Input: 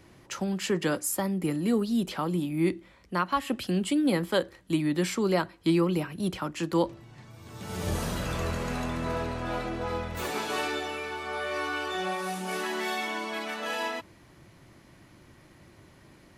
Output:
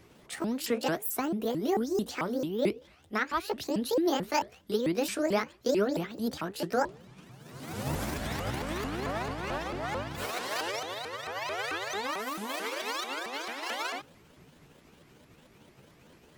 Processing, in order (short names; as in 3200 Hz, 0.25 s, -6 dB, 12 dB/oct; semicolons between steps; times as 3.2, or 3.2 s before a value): repeated pitch sweeps +10 st, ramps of 0.221 s; gain -1.5 dB